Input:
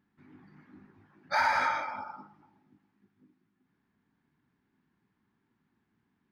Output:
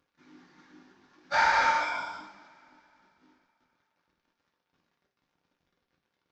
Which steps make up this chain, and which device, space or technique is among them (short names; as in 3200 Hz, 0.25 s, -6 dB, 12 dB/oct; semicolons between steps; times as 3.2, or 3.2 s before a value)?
early wireless headset (HPF 280 Hz 12 dB/oct; CVSD 32 kbps); 1.8–2.24 ripple EQ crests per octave 1.7, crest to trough 16 dB; two-slope reverb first 0.54 s, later 3.6 s, from -27 dB, DRR -1 dB